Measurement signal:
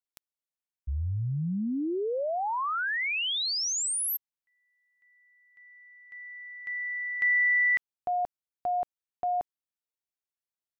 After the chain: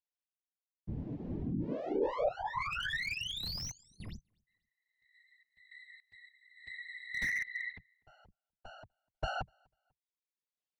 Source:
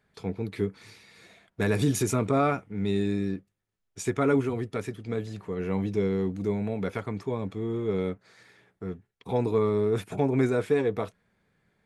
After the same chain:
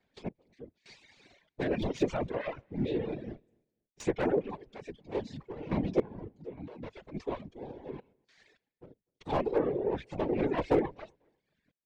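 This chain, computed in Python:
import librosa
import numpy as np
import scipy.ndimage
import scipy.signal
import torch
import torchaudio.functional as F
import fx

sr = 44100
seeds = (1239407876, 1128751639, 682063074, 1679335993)

p1 = fx.lower_of_two(x, sr, delay_ms=5.0)
p2 = fx.low_shelf(p1, sr, hz=190.0, db=-4.0)
p3 = fx.env_lowpass_down(p2, sr, base_hz=2000.0, full_db=-23.0)
p4 = fx.peak_eq(p3, sr, hz=1300.0, db=-10.0, octaves=0.54)
p5 = fx.whisperise(p4, sr, seeds[0])
p6 = fx.tremolo_random(p5, sr, seeds[1], hz=3.5, depth_pct=95)
p7 = p6 + fx.echo_feedback(p6, sr, ms=247, feedback_pct=23, wet_db=-23.0, dry=0)
p8 = fx.dereverb_blind(p7, sr, rt60_s=0.78)
p9 = scipy.signal.sosfilt(scipy.signal.bessel(6, 5100.0, 'lowpass', norm='mag', fs=sr, output='sos'), p8)
p10 = fx.slew_limit(p9, sr, full_power_hz=36.0)
y = F.gain(torch.from_numpy(p10), 3.5).numpy()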